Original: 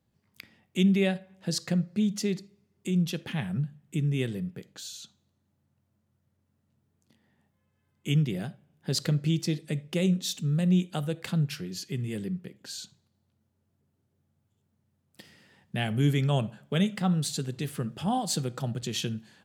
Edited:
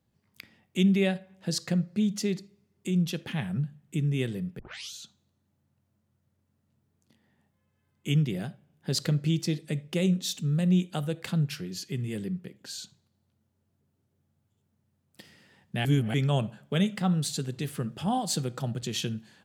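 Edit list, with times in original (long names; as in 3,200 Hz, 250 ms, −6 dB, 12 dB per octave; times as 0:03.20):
0:04.59: tape start 0.34 s
0:15.85–0:16.14: reverse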